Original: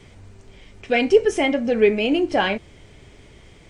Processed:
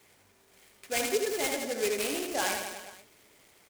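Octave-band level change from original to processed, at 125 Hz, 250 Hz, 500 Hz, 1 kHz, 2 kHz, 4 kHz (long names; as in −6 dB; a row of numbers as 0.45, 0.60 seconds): −17.0, −16.5, −13.0, −9.5, −9.0, −6.0 decibels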